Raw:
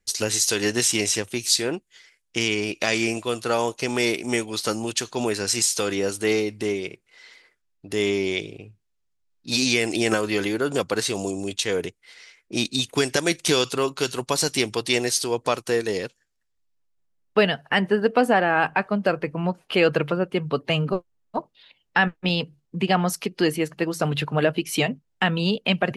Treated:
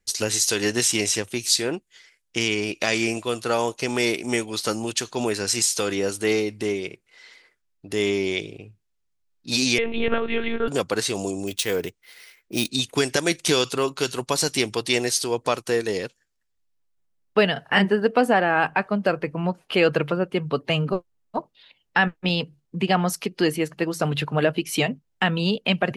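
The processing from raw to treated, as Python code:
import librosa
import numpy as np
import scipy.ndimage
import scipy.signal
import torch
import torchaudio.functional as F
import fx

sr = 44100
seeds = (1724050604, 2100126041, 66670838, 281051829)

y = fx.lpc_monotone(x, sr, seeds[0], pitch_hz=230.0, order=10, at=(9.78, 10.68))
y = fx.resample_bad(y, sr, factor=3, down='none', up='hold', at=(11.47, 12.69))
y = fx.doubler(y, sr, ms=31.0, db=-2.5, at=(17.53, 17.93))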